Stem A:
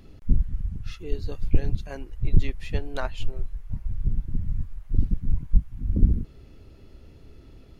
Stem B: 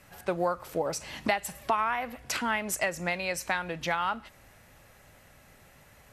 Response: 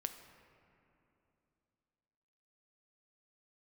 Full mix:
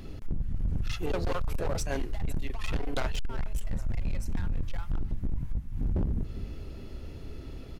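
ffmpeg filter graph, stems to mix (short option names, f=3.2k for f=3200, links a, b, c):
-filter_complex "[0:a]acompressor=threshold=-24dB:ratio=16,volume=0.5dB,asplit=3[a][b][c];[b]volume=-18dB[d];[1:a]asoftclip=type=hard:threshold=-26.5dB,adelay=850,volume=-6.5dB,afade=t=out:st=1.73:d=0.38:silence=0.223872[e];[c]apad=whole_len=307563[f];[e][f]sidechaingate=range=-33dB:threshold=-34dB:ratio=16:detection=peak[g];[d]aecho=0:1:404|808|1212|1616:1|0.3|0.09|0.027[h];[a][g][h]amix=inputs=3:normalize=0,bandreject=f=107.3:t=h:w=4,bandreject=f=214.6:t=h:w=4,bandreject=f=321.9:t=h:w=4,bandreject=f=429.2:t=h:w=4,acontrast=63,volume=24.5dB,asoftclip=hard,volume=-24.5dB"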